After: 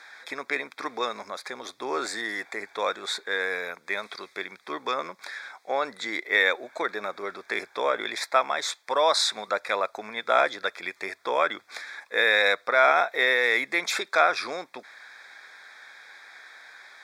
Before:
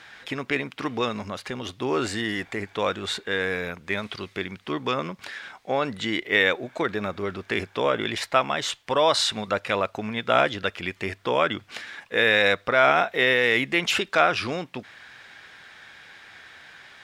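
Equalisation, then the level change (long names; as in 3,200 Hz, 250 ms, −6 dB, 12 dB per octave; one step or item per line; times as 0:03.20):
high-pass filter 520 Hz 12 dB per octave
Butterworth band-reject 2,900 Hz, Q 2.9
0.0 dB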